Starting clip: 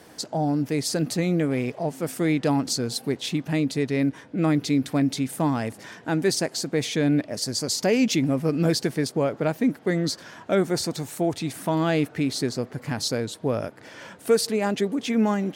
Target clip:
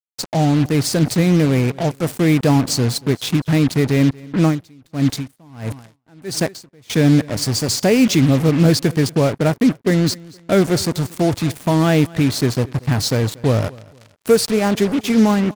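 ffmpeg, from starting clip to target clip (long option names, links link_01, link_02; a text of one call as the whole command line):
ffmpeg -i in.wav -filter_complex "[0:a]equalizer=frequency=96:width=1.1:gain=12.5,acrusher=bits=4:mix=0:aa=0.5,aecho=1:1:234|468:0.075|0.0247,asettb=1/sr,asplit=3[link_01][link_02][link_03];[link_01]atrim=end=4.434[link_04];[link_02]atrim=start=4.43:end=6.9,asetpts=PTS-STARTPTS,afade=type=in:duration=0.004:curve=qsin,afade=type=out:start_time=2.466:duration=0.004:curve=qsin,aeval=exprs='val(0)*pow(10,-32*(0.5-0.5*cos(2*PI*1.5*n/s))/20)':channel_layout=same[link_05];[link_03]atrim=start=6.896[link_06];[link_04][link_05]acrossfade=duration=0.004:curve1=hsin:curve2=qsin[link_07];[link_07][link_06]acrossfade=duration=0.004:curve1=qsin:curve2=hsin,volume=5.5dB" out.wav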